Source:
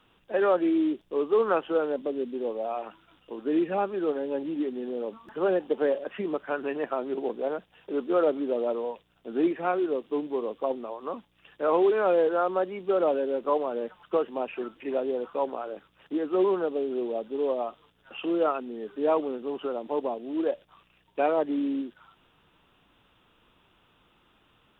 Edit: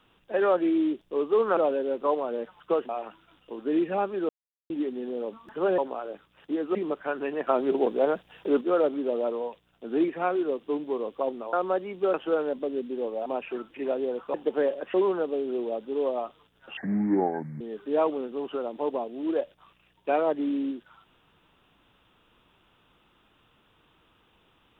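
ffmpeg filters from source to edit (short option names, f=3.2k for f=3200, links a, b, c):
-filter_complex "[0:a]asplit=16[a][b][c][d][e][f][g][h][i][j][k][l][m][n][o][p];[a]atrim=end=1.572[q];[b]atrim=start=12.998:end=14.322[r];[c]atrim=start=2.688:end=4.09,asetpts=PTS-STARTPTS,afade=t=out:st=1.398:d=0.004:c=hsin[s];[d]atrim=start=4.09:end=4.5,asetpts=PTS-STARTPTS,volume=0[t];[e]atrim=start=4.5:end=5.582,asetpts=PTS-STARTPTS,afade=t=in:d=0.004:c=hsin[u];[f]atrim=start=15.398:end=16.372[v];[g]atrim=start=6.178:end=6.902[w];[h]atrim=start=6.898:end=8.042,asetpts=PTS-STARTPTS,volume=6dB[x];[i]atrim=start=8.038:end=10.962[y];[j]atrim=start=12.388:end=13.002[z];[k]atrim=start=1.568:end=2.692[aa];[l]atrim=start=14.318:end=15.402[ab];[m]atrim=start=5.578:end=6.182[ac];[n]atrim=start=16.368:end=18.204[ad];[o]atrim=start=18.2:end=18.71,asetpts=PTS-STARTPTS,asetrate=26901,aresample=44100,atrim=end_sample=36870,asetpts=PTS-STARTPTS[ae];[p]atrim=start=18.706[af];[q][r]acrossfade=d=0.004:c1=hsin:c2=hsin[ag];[s][t][u]concat=n=3:v=0:a=1[ah];[ag][ah]acrossfade=d=0.004:c1=hsin:c2=hsin[ai];[ai][v]acrossfade=d=0.004:c1=hsin:c2=hsin[aj];[aj][w]acrossfade=d=0.004:c1=hsin:c2=hsin[ak];[ak][x]acrossfade=d=0.004:c1=hsin:c2=hsin[al];[al][y]acrossfade=d=0.004:c1=hsin:c2=hsin[am];[am][z]acrossfade=d=0.004:c1=hsin:c2=hsin[an];[an][aa]acrossfade=d=0.004:c1=hsin:c2=hsin[ao];[ao][ab]acrossfade=d=0.004:c1=hsin:c2=hsin[ap];[ap][ac]acrossfade=d=0.004:c1=hsin:c2=hsin[aq];[aq][ad]acrossfade=d=0.004:c1=hsin:c2=hsin[ar];[ar][ae]acrossfade=d=0.004:c1=hsin:c2=hsin[as];[as][af]acrossfade=d=0.004:c1=hsin:c2=hsin"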